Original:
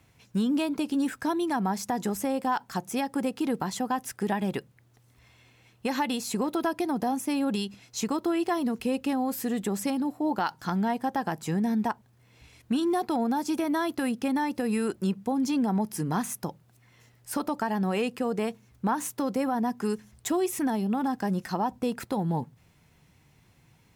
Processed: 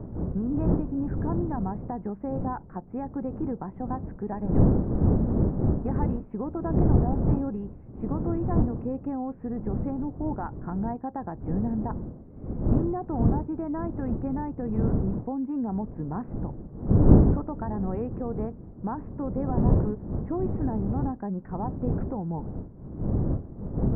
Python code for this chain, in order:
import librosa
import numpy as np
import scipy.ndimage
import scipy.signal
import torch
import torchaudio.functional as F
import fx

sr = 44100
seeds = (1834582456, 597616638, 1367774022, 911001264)

y = fx.dmg_wind(x, sr, seeds[0], corner_hz=210.0, level_db=-24.0)
y = scipy.ndimage.gaussian_filter1d(y, 7.0, mode='constant')
y = y * 10.0 ** (-3.0 / 20.0)